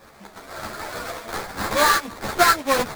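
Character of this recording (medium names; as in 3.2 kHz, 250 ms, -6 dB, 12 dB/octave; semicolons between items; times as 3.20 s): aliases and images of a low sample rate 2.9 kHz, jitter 20%; a shimmering, thickened sound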